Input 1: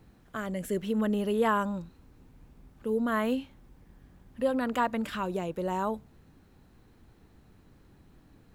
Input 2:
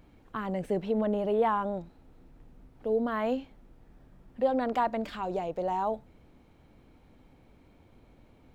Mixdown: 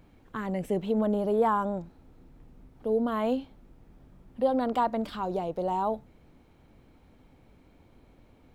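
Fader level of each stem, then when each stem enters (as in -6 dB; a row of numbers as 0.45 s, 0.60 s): -10.5 dB, 0.0 dB; 0.00 s, 0.00 s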